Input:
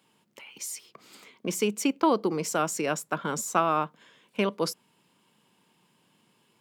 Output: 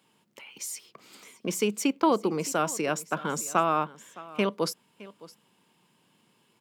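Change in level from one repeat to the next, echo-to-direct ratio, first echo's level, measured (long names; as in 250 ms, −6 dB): repeats not evenly spaced, −19.5 dB, −19.5 dB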